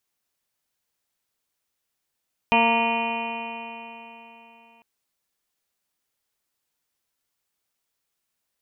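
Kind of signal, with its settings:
stiff-string partials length 2.30 s, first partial 229 Hz, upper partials −4/1/5/−7.5/−20/−20/−13/−12/3/−3/−6 dB, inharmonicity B 0.0015, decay 3.55 s, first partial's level −23.5 dB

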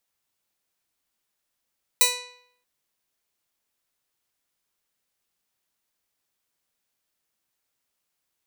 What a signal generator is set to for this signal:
Karplus-Strong string B4, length 0.63 s, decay 0.69 s, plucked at 0.3, bright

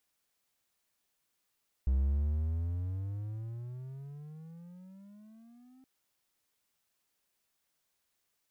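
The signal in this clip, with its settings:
pitch glide with a swell triangle, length 3.97 s, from 64.2 Hz, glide +24.5 semitones, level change −32 dB, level −22.5 dB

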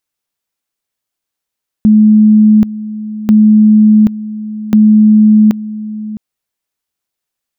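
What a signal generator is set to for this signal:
tone at two levels in turn 214 Hz −2.5 dBFS, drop 16 dB, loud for 0.78 s, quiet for 0.66 s, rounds 3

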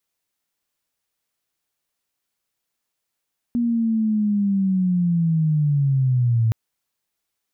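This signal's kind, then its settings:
glide linear 240 Hz → 110 Hz −17.5 dBFS → −15 dBFS 2.97 s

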